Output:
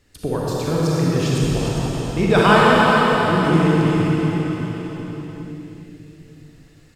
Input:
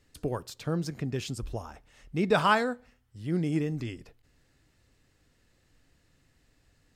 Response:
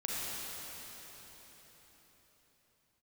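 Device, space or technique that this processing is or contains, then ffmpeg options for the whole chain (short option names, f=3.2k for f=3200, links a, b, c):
cave: -filter_complex "[0:a]aecho=1:1:399:0.376[a];[1:a]atrim=start_sample=2205[b];[a][b]afir=irnorm=-1:irlink=0,volume=8dB"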